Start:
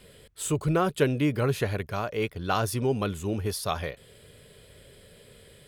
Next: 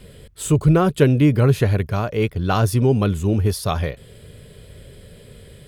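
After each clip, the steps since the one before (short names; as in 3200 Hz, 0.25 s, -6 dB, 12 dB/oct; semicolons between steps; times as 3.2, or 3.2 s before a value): low shelf 290 Hz +10.5 dB; gain +4 dB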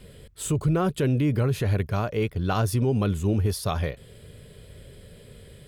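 limiter -11.5 dBFS, peak gain reduction 8.5 dB; gain -4 dB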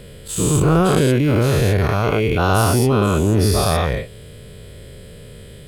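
spectral dilation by 0.24 s; gain +3 dB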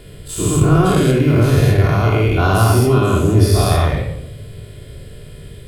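shoebox room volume 2400 m³, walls furnished, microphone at 3.2 m; gain -2.5 dB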